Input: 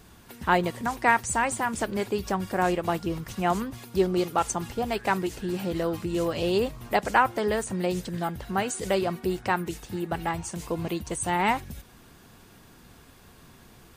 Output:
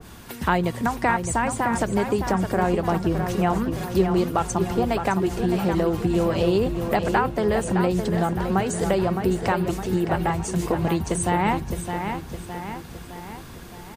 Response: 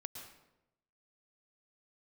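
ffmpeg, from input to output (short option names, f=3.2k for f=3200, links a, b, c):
-filter_complex "[0:a]acrossover=split=170[a][b];[b]acompressor=threshold=-31dB:ratio=2.5[c];[a][c]amix=inputs=2:normalize=0,asplit=2[d][e];[e]adelay=613,lowpass=f=4.5k:p=1,volume=-7dB,asplit=2[f][g];[g]adelay=613,lowpass=f=4.5k:p=1,volume=0.54,asplit=2[h][i];[i]adelay=613,lowpass=f=4.5k:p=1,volume=0.54,asplit=2[j][k];[k]adelay=613,lowpass=f=4.5k:p=1,volume=0.54,asplit=2[l][m];[m]adelay=613,lowpass=f=4.5k:p=1,volume=0.54,asplit=2[n][o];[o]adelay=613,lowpass=f=4.5k:p=1,volume=0.54,asplit=2[p][q];[q]adelay=613,lowpass=f=4.5k:p=1,volume=0.54[r];[f][h][j][l][n][p][r]amix=inputs=7:normalize=0[s];[d][s]amix=inputs=2:normalize=0,adynamicequalizer=threshold=0.00501:dfrequency=1700:dqfactor=0.7:tfrequency=1700:tqfactor=0.7:attack=5:release=100:ratio=0.375:range=2.5:mode=cutabove:tftype=highshelf,volume=9dB"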